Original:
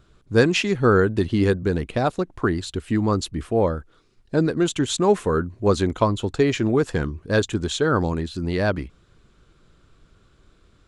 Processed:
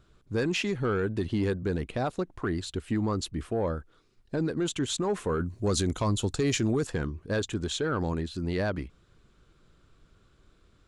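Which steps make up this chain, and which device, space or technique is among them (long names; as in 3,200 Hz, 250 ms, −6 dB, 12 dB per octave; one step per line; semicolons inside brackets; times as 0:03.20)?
soft clipper into limiter (soft clipping −9.5 dBFS, distortion −20 dB; brickwall limiter −16 dBFS, peak gain reduction 6 dB)
0:05.40–0:06.87: bass and treble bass +4 dB, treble +12 dB
level −5 dB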